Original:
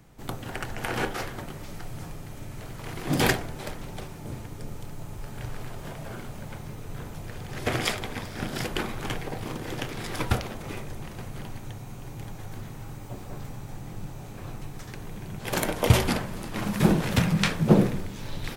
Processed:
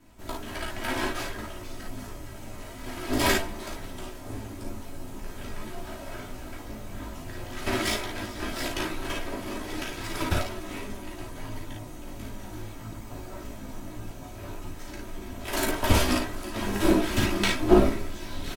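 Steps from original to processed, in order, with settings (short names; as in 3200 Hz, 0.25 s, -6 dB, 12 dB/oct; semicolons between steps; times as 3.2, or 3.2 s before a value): minimum comb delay 3.1 ms; early reflections 36 ms -5.5 dB, 55 ms -4 dB; chorus voices 6, 0.18 Hz, delay 15 ms, depth 4.7 ms; gain +2.5 dB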